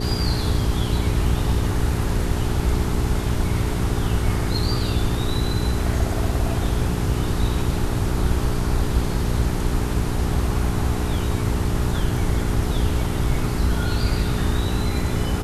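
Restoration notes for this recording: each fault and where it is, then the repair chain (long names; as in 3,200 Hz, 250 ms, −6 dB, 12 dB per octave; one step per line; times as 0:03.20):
mains hum 60 Hz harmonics 7 −26 dBFS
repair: hum removal 60 Hz, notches 7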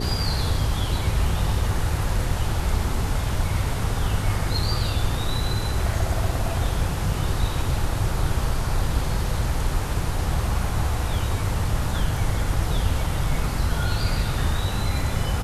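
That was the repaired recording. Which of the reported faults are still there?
none of them is left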